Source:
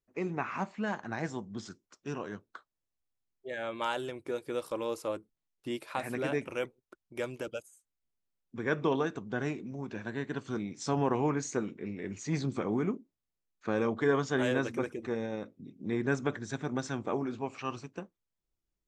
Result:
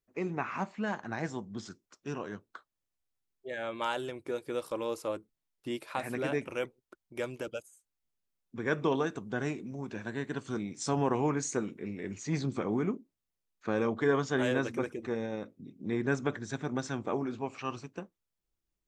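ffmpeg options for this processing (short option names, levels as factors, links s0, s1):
-filter_complex "[0:a]asettb=1/sr,asplit=3[s0][s1][s2];[s0]atrim=end=8.654[s3];[s1]atrim=start=8.65:end=12.14,asetpts=PTS-STARTPTS,afade=t=in:d=0.004:c=qsin,afade=t=out:st=3.486:d=0.004:c=qsin,equalizer=f=9800:t=o:w=0.77:g=10[s4];[s2]atrim=start=12.136[s5];[s3][s4]acrossfade=d=0.004:c1=hsin:c2=qsin[s6];[s6][s5]acrossfade=d=0.004:c1=qsin:c2=hsin"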